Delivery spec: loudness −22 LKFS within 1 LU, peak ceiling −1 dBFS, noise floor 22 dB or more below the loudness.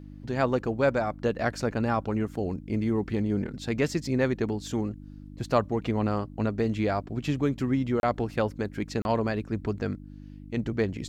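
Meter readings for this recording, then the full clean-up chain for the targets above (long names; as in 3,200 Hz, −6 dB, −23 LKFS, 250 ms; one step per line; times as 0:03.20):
number of dropouts 2; longest dropout 31 ms; mains hum 50 Hz; hum harmonics up to 300 Hz; level of the hum −41 dBFS; integrated loudness −28.5 LKFS; sample peak −10.0 dBFS; target loudness −22.0 LKFS
→ repair the gap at 0:08.00/0:09.02, 31 ms
hum removal 50 Hz, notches 6
level +6.5 dB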